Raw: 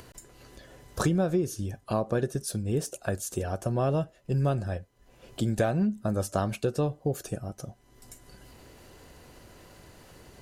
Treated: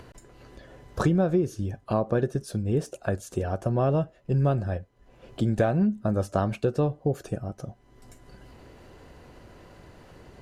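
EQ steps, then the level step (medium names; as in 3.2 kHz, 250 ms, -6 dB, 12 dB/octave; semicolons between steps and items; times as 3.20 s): low-pass 2.1 kHz 6 dB/octave; +3.0 dB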